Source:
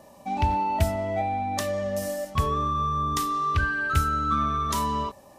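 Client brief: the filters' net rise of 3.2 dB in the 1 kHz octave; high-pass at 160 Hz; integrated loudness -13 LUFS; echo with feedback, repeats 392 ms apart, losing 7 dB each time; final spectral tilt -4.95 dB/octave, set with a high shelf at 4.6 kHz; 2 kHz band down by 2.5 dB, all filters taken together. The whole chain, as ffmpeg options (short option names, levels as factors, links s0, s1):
-af "highpass=160,equalizer=f=1000:t=o:g=6,equalizer=f=2000:t=o:g=-6,highshelf=f=4600:g=-4.5,aecho=1:1:392|784|1176|1568|1960:0.447|0.201|0.0905|0.0407|0.0183,volume=3.55"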